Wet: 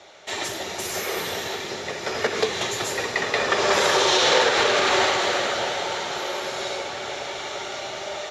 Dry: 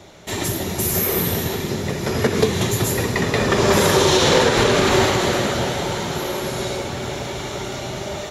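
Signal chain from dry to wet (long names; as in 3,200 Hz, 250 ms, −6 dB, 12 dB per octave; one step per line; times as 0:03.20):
three-way crossover with the lows and the highs turned down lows −20 dB, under 450 Hz, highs −21 dB, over 7,300 Hz
notch filter 1,000 Hz, Q 13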